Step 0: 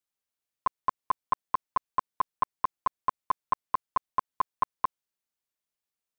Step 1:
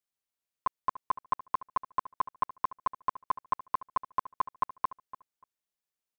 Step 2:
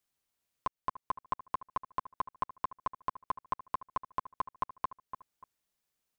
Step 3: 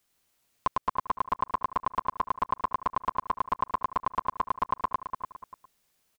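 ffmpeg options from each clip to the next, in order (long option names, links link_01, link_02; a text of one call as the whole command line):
ffmpeg -i in.wav -filter_complex "[0:a]asplit=2[link_01][link_02];[link_02]adelay=292,lowpass=frequency=2700:poles=1,volume=-15dB,asplit=2[link_03][link_04];[link_04]adelay=292,lowpass=frequency=2700:poles=1,volume=0.17[link_05];[link_01][link_03][link_05]amix=inputs=3:normalize=0,volume=-2.5dB" out.wav
ffmpeg -i in.wav -af "lowshelf=frequency=220:gain=5,acompressor=threshold=-46dB:ratio=2,volume=6dB" out.wav
ffmpeg -i in.wav -filter_complex "[0:a]asplit=2[link_01][link_02];[link_02]alimiter=level_in=1.5dB:limit=-24dB:level=0:latency=1:release=429,volume=-1.5dB,volume=0.5dB[link_03];[link_01][link_03]amix=inputs=2:normalize=0,aecho=1:1:102|215.7:0.794|0.282,volume=3dB" out.wav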